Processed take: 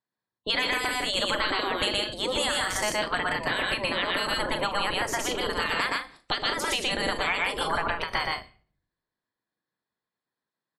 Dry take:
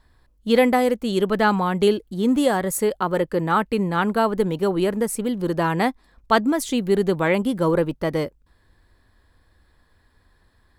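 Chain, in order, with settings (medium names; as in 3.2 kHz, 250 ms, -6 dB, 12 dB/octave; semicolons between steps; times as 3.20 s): spectral gate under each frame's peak -15 dB weak; in parallel at -7 dB: integer overflow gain 18 dB; on the sum: gate -48 dBFS, range -36 dB; spectral gate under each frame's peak -25 dB strong; low-pass 10 kHz 24 dB/octave; loudspeakers at several distances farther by 41 m -1 dB, 54 m -7 dB; compression, threshold -30 dBFS, peak gain reduction 9 dB; on a send at -16 dB: peaking EQ 6.9 kHz +9.5 dB 2.1 oct + reverberation RT60 0.50 s, pre-delay 7 ms; on the sum: endings held to a fixed fall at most 180 dB/s; trim +6.5 dB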